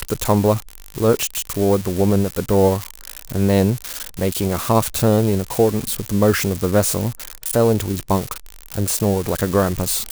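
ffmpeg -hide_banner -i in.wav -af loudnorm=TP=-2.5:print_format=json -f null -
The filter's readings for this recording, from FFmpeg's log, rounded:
"input_i" : "-19.4",
"input_tp" : "-3.5",
"input_lra" : "1.9",
"input_thresh" : "-29.7",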